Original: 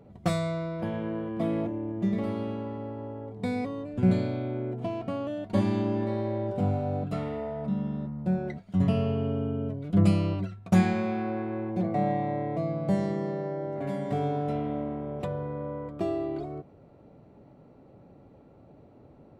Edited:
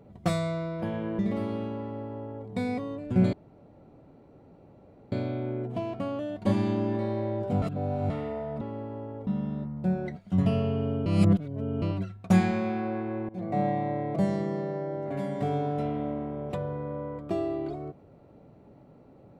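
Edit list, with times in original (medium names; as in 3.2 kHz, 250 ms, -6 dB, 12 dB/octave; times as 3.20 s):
1.19–2.06 s: delete
2.68–3.34 s: copy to 7.69 s
4.20 s: insert room tone 1.79 s
6.70–7.18 s: reverse
9.48–10.24 s: reverse
11.71–12.01 s: fade in linear, from -19.5 dB
12.58–12.86 s: delete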